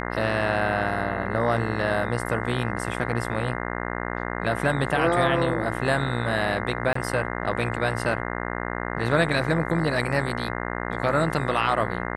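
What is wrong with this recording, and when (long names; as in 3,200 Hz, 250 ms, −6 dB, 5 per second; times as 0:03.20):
mains buzz 60 Hz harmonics 35 −30 dBFS
0:06.93–0:06.95: drop-out 24 ms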